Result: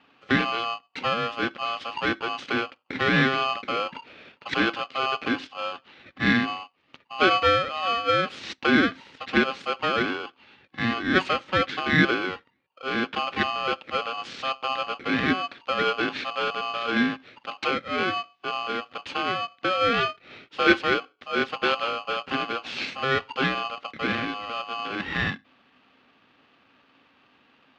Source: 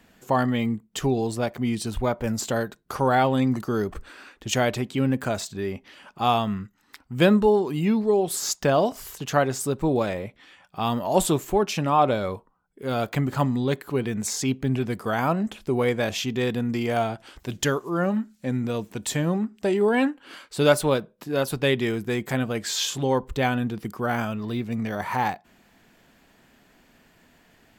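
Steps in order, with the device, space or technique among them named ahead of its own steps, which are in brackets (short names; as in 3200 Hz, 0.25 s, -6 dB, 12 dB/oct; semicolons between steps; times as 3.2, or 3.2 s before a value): ring modulator pedal into a guitar cabinet (polarity switched at an audio rate 930 Hz; speaker cabinet 97–3600 Hz, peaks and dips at 260 Hz +9 dB, 680 Hz -9 dB, 1000 Hz -6 dB)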